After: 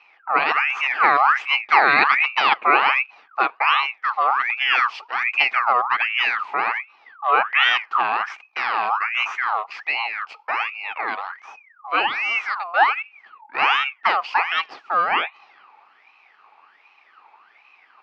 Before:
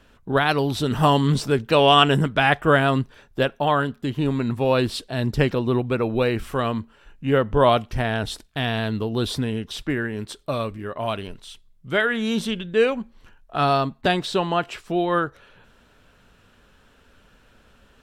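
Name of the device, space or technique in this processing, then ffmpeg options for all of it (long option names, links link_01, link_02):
voice changer toy: -af "aeval=exprs='val(0)*sin(2*PI*1700*n/s+1700*0.5/1.3*sin(2*PI*1.3*n/s))':channel_layout=same,highpass=430,equalizer=frequency=550:width_type=q:width=4:gain=-5,equalizer=frequency=820:width_type=q:width=4:gain=10,equalizer=frequency=1200:width_type=q:width=4:gain=9,equalizer=frequency=2500:width_type=q:width=4:gain=6,equalizer=frequency=3700:width_type=q:width=4:gain=-7,lowpass=frequency=4200:width=0.5412,lowpass=frequency=4200:width=1.3066"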